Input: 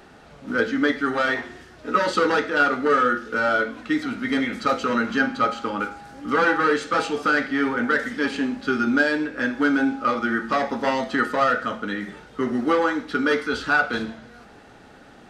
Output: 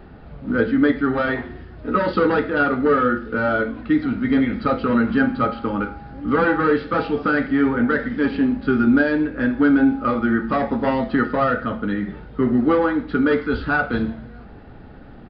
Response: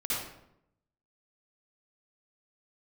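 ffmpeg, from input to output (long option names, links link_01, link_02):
-af "aemphasis=mode=reproduction:type=riaa,aresample=11025,aresample=44100"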